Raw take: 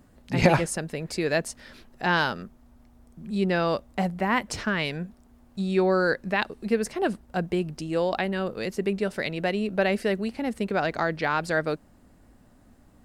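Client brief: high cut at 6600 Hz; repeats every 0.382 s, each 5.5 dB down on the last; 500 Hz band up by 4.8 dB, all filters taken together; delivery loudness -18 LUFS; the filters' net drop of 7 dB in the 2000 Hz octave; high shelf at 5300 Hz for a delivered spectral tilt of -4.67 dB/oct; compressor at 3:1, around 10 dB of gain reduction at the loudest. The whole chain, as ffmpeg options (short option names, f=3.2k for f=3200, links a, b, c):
-af "lowpass=6.6k,equalizer=f=500:t=o:g=6.5,equalizer=f=2k:t=o:g=-9,highshelf=f=5.3k:g=-8.5,acompressor=threshold=-24dB:ratio=3,aecho=1:1:382|764|1146|1528|1910|2292|2674:0.531|0.281|0.149|0.079|0.0419|0.0222|0.0118,volume=10dB"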